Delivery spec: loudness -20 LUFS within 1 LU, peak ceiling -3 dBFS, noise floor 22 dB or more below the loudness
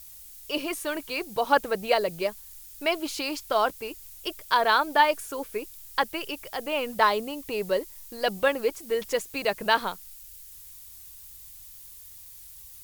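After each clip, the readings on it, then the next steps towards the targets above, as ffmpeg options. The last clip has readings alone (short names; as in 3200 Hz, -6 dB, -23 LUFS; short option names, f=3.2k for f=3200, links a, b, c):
noise floor -47 dBFS; noise floor target -49 dBFS; loudness -27.0 LUFS; peak -6.5 dBFS; loudness target -20.0 LUFS
-> -af "afftdn=nr=6:nf=-47"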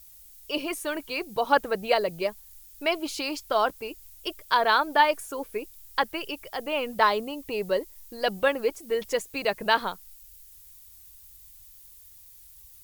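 noise floor -51 dBFS; loudness -27.0 LUFS; peak -6.5 dBFS; loudness target -20.0 LUFS
-> -af "volume=7dB,alimiter=limit=-3dB:level=0:latency=1"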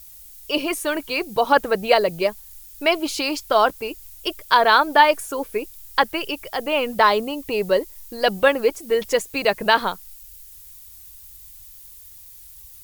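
loudness -20.5 LUFS; peak -3.0 dBFS; noise floor -44 dBFS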